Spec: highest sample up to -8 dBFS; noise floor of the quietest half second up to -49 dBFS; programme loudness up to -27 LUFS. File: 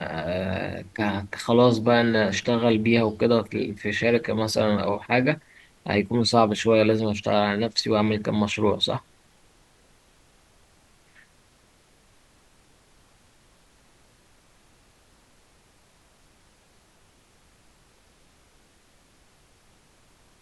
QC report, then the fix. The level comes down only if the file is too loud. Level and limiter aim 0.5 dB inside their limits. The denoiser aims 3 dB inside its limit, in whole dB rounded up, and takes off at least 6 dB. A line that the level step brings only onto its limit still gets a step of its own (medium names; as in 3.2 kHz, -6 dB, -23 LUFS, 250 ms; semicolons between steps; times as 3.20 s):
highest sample -4.0 dBFS: fail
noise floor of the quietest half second -59 dBFS: pass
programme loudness -23.0 LUFS: fail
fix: trim -4.5 dB